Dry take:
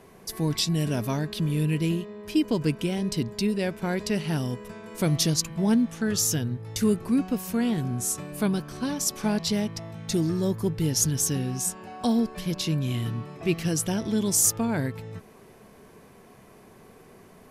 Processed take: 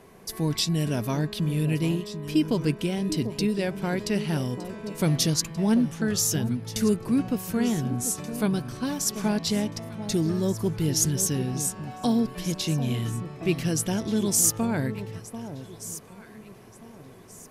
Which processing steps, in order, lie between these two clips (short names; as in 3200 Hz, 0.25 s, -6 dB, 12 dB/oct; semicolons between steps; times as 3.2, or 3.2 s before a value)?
echo with dull and thin repeats by turns 0.74 s, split 1000 Hz, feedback 53%, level -10.5 dB